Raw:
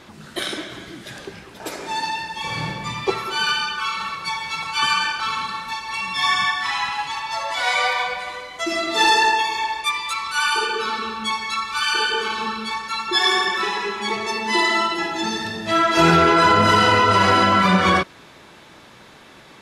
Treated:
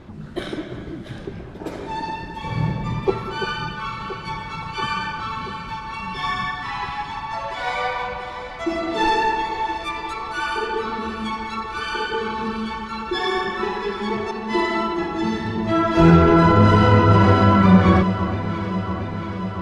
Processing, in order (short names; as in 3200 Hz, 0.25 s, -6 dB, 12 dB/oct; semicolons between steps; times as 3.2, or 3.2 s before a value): 14.31–14.98 expander -20 dBFS; tilt -4 dB/oct; on a send: echo with dull and thin repeats by turns 0.341 s, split 1400 Hz, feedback 84%, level -10.5 dB; on the sum: gain -3 dB